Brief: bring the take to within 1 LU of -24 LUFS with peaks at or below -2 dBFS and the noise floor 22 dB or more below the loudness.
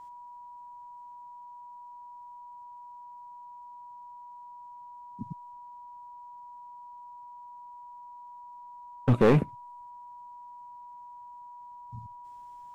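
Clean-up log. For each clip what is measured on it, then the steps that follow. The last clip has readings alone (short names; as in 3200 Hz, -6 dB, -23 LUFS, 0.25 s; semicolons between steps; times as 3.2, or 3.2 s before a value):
clipped 0.3%; flat tops at -15.5 dBFS; steady tone 970 Hz; tone level -44 dBFS; loudness -28.0 LUFS; peak -15.5 dBFS; loudness target -24.0 LUFS
-> clip repair -15.5 dBFS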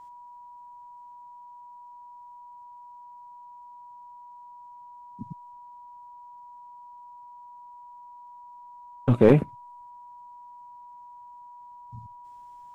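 clipped 0.0%; steady tone 970 Hz; tone level -44 dBFS
-> notch 970 Hz, Q 30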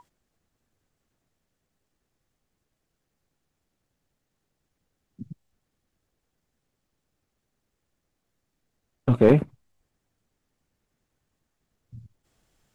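steady tone none; loudness -21.0 LUFS; peak -6.5 dBFS; loudness target -24.0 LUFS
-> gain -3 dB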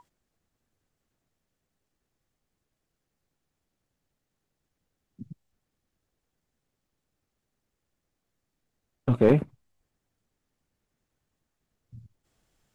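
loudness -24.0 LUFS; peak -9.5 dBFS; noise floor -83 dBFS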